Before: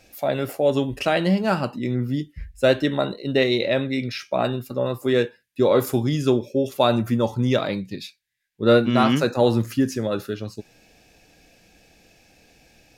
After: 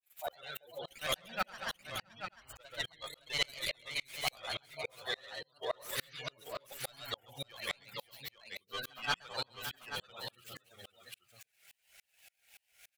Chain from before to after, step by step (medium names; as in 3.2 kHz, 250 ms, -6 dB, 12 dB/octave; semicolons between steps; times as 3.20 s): median filter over 9 samples; RIAA curve recording; spectral gate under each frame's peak -20 dB strong; amplifier tone stack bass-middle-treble 10-0-10; painted sound noise, 5.91–6.15 s, 1.1–4.7 kHz -40 dBFS; one-sided clip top -31.5 dBFS; granulator, pitch spread up and down by 3 st; multi-tap echo 133/566/835 ms -6.5/-11/-6 dB; sawtooth tremolo in dB swelling 3.5 Hz, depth 35 dB; trim +5 dB